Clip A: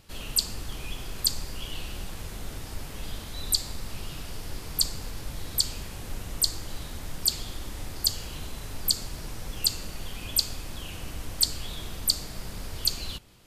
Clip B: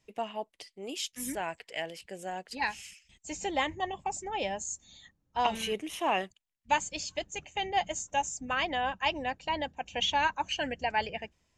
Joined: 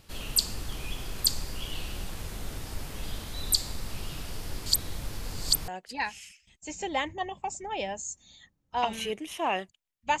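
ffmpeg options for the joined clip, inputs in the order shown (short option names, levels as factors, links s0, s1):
-filter_complex "[0:a]apad=whole_dur=10.2,atrim=end=10.2,asplit=2[s0][s1];[s0]atrim=end=4.662[s2];[s1]atrim=start=4.658:end=5.682,asetpts=PTS-STARTPTS,areverse[s3];[1:a]atrim=start=2.298:end=6.82[s4];[s2][s3]acrossfade=d=0.004:c1=hsin:c2=hsin[s5];[s5][s4]acrossfade=d=0.004:c1=hsin:c2=hsin"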